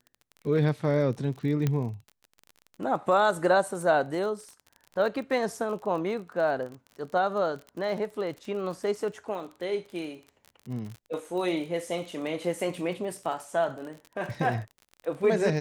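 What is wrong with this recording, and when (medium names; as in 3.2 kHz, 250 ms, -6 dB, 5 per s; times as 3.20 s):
crackle 38 per s -36 dBFS
1.67 s: pop -14 dBFS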